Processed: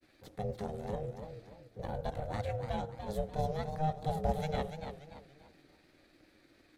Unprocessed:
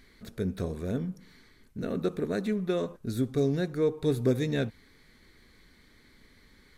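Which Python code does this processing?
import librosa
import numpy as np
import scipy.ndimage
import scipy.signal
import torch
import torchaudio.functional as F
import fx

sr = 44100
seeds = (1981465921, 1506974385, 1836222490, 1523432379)

y = fx.granulator(x, sr, seeds[0], grain_ms=100.0, per_s=20.0, spray_ms=20.0, spread_st=0)
y = y * np.sin(2.0 * np.pi * 310.0 * np.arange(len(y)) / sr)
y = fx.echo_warbled(y, sr, ms=288, feedback_pct=36, rate_hz=2.8, cents=119, wet_db=-8.0)
y = y * 10.0 ** (-3.0 / 20.0)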